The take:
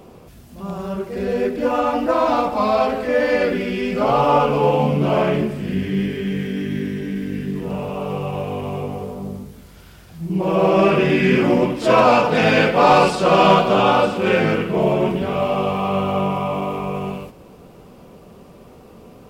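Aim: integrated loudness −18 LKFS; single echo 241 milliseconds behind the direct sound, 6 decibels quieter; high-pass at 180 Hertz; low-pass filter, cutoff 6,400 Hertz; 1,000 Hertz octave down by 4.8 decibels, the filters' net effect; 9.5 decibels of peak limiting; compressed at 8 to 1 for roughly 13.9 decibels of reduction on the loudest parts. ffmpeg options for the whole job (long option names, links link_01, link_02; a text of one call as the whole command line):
ffmpeg -i in.wav -af "highpass=180,lowpass=6400,equalizer=frequency=1000:width_type=o:gain=-6.5,acompressor=threshold=-27dB:ratio=8,alimiter=level_in=3dB:limit=-24dB:level=0:latency=1,volume=-3dB,aecho=1:1:241:0.501,volume=16.5dB" out.wav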